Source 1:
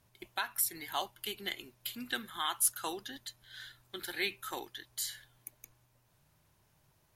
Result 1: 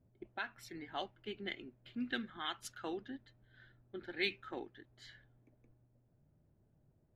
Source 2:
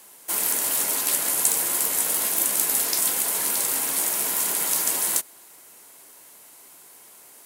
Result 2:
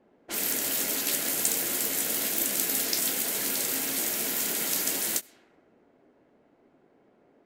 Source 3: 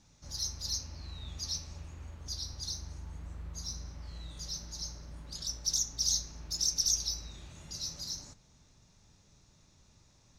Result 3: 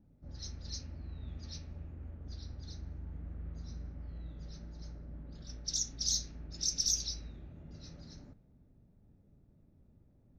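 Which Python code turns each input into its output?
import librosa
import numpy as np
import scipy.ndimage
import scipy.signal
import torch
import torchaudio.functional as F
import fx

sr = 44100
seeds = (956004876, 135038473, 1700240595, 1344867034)

y = fx.graphic_eq_15(x, sr, hz=(250, 1000, 10000), db=(5, -11, -9))
y = fx.env_lowpass(y, sr, base_hz=700.0, full_db=-26.5)
y = fx.end_taper(y, sr, db_per_s=500.0)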